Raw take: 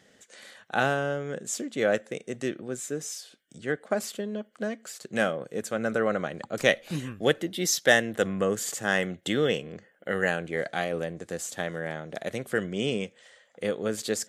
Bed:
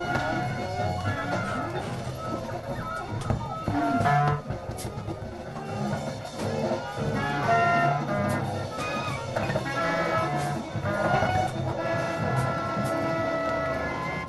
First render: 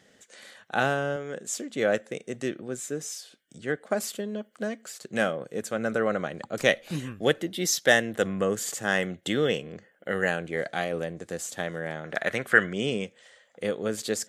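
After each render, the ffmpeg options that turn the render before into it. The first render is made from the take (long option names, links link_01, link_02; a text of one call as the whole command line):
ffmpeg -i in.wav -filter_complex "[0:a]asettb=1/sr,asplit=3[link_01][link_02][link_03];[link_01]atrim=end=1.164[link_04];[link_02]atrim=start=1.16:end=1.7,asetpts=PTS-STARTPTS,afade=type=in:duration=0.004:curve=qsin,afade=type=out:start_time=0.536:duration=0.004:curve=qsin,highpass=frequency=250:poles=1[link_05];[link_03]atrim=start=1.696[link_06];[link_04][link_05]acrossfade=duration=0.004:curve1=hsin:curve2=qsin[link_07];[link_07][link_06]acrossfade=duration=0.004:curve1=qsin:curve2=hsin,asettb=1/sr,asplit=3[link_08][link_09][link_10];[link_08]atrim=end=3.864[link_11];[link_09]atrim=start=3.86:end=4.82,asetpts=PTS-STARTPTS,afade=type=in:duration=0.004:curve=qsin,afade=type=out:start_time=0.956:duration=0.004:curve=qsin,highshelf=frequency=7200:gain=5.5[link_12];[link_10]atrim=start=4.816[link_13];[link_11][link_12]acrossfade=duration=0.004:curve1=hsin:curve2=qsin[link_14];[link_14][link_13]acrossfade=duration=0.004:curve1=qsin:curve2=hsin,asettb=1/sr,asplit=3[link_15][link_16][link_17];[link_15]atrim=end=12.044[link_18];[link_16]atrim=start=12.04:end=12.73,asetpts=PTS-STARTPTS,afade=type=in:duration=0.004:curve=qsin,afade=type=out:start_time=0.686:duration=0.004:curve=qsin,equalizer=frequency=1600:width_type=o:width=1.6:gain=13.5[link_19];[link_17]atrim=start=12.726[link_20];[link_18][link_19]acrossfade=duration=0.004:curve1=hsin:curve2=qsin[link_21];[link_21][link_20]acrossfade=duration=0.004:curve1=qsin:curve2=hsin" out.wav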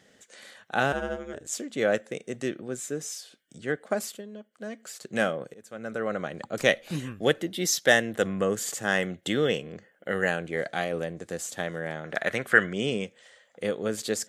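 ffmpeg -i in.wav -filter_complex "[0:a]asettb=1/sr,asplit=3[link_01][link_02][link_03];[link_01]atrim=end=0.924[link_04];[link_02]atrim=start=0.92:end=1.52,asetpts=PTS-STARTPTS,afade=type=in:duration=0.004:curve=qsin,afade=type=out:start_time=0.596:duration=0.004:curve=qsin,aeval=exprs='val(0)*sin(2*PI*77*n/s)':channel_layout=same[link_05];[link_03]atrim=start=1.516[link_06];[link_04][link_05]acrossfade=duration=0.004:curve1=hsin:curve2=qsin[link_07];[link_07][link_06]acrossfade=duration=0.004:curve1=qsin:curve2=hsin,asplit=4[link_08][link_09][link_10][link_11];[link_08]atrim=end=4.23,asetpts=PTS-STARTPTS,afade=type=out:start_time=3.82:duration=0.41:curve=qsin:silence=0.354813[link_12];[link_09]atrim=start=4.23:end=4.61,asetpts=PTS-STARTPTS,volume=-9dB[link_13];[link_10]atrim=start=4.61:end=5.54,asetpts=PTS-STARTPTS,afade=type=in:duration=0.41:curve=qsin:silence=0.354813,afade=type=out:start_time=0.926:duration=0.004:curve=hsin:silence=0.0749894[link_14];[link_11]atrim=start=5.54,asetpts=PTS-STARTPTS,afade=type=in:duration=0.87:silence=0.0749894[link_15];[link_12][link_13][link_14][link_15]concat=n=4:v=0:a=1" out.wav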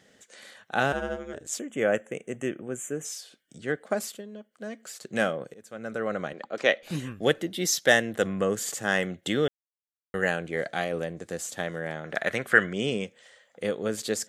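ffmpeg -i in.wav -filter_complex "[0:a]asettb=1/sr,asplit=3[link_01][link_02][link_03];[link_01]atrim=end=1.594[link_04];[link_02]atrim=start=1.59:end=3.05,asetpts=PTS-STARTPTS,afade=type=in:duration=0.004:curve=qsin,afade=type=out:start_time=1.456:duration=0.004:curve=qsin,asuperstop=centerf=4500:order=8:qfactor=1.5[link_05];[link_03]atrim=start=3.046[link_06];[link_04][link_05]acrossfade=duration=0.004:curve1=hsin:curve2=qsin[link_07];[link_07][link_06]acrossfade=duration=0.004:curve1=qsin:curve2=hsin,asettb=1/sr,asplit=3[link_08][link_09][link_10];[link_08]atrim=end=6.334[link_11];[link_09]atrim=start=6.33:end=6.83,asetpts=PTS-STARTPTS,afade=type=in:duration=0.004:curve=qsin,afade=type=out:start_time=0.496:duration=0.004:curve=qsin,highpass=310,lowpass=4100[link_12];[link_10]atrim=start=6.826[link_13];[link_11][link_12]acrossfade=duration=0.004:curve1=hsin:curve2=qsin[link_14];[link_14][link_13]acrossfade=duration=0.004:curve1=qsin:curve2=hsin,asplit=3[link_15][link_16][link_17];[link_15]atrim=end=9.48,asetpts=PTS-STARTPTS,afade=type=out:start_time=9.476:duration=0.004:curve=hsin[link_18];[link_16]atrim=start=9.48:end=10.14,asetpts=PTS-STARTPTS,volume=0[link_19];[link_17]atrim=start=10.14,asetpts=PTS-STARTPTS,afade=type=in:duration=0.004:curve=hsin[link_20];[link_18][link_19][link_20]concat=n=3:v=0:a=1" out.wav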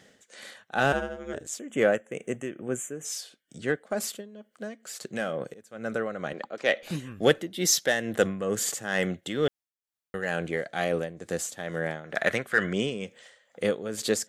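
ffmpeg -i in.wav -filter_complex "[0:a]asplit=2[link_01][link_02];[link_02]asoftclip=type=tanh:threshold=-19dB,volume=-4.5dB[link_03];[link_01][link_03]amix=inputs=2:normalize=0,tremolo=f=2.2:d=0.66" out.wav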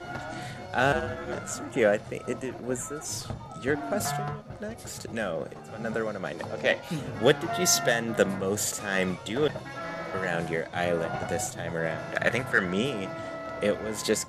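ffmpeg -i in.wav -i bed.wav -filter_complex "[1:a]volume=-9.5dB[link_01];[0:a][link_01]amix=inputs=2:normalize=0" out.wav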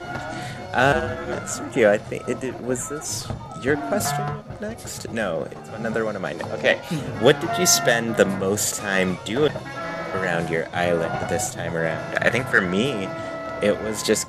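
ffmpeg -i in.wav -af "volume=6dB,alimiter=limit=-2dB:level=0:latency=1" out.wav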